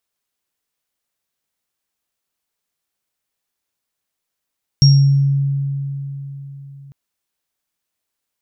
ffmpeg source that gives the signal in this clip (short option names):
-f lavfi -i "aevalsrc='0.531*pow(10,-3*t/4.01)*sin(2*PI*139*t)+0.266*pow(10,-3*t/0.54)*sin(2*PI*5570*t)':d=2.1:s=44100"